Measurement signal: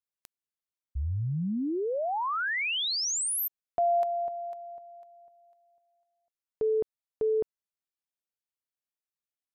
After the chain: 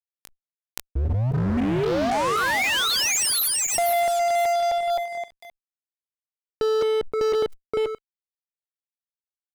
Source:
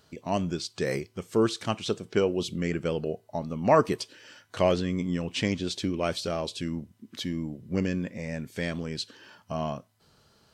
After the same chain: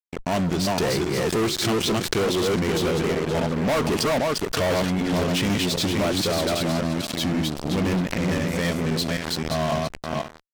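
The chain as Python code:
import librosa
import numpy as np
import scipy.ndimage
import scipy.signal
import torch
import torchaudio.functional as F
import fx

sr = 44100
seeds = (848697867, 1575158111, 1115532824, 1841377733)

y = fx.reverse_delay_fb(x, sr, ms=262, feedback_pct=44, wet_db=-2.0)
y = fx.fuzz(y, sr, gain_db=32.0, gate_db=-39.0)
y = fx.pre_swell(y, sr, db_per_s=50.0)
y = y * 10.0 ** (-6.5 / 20.0)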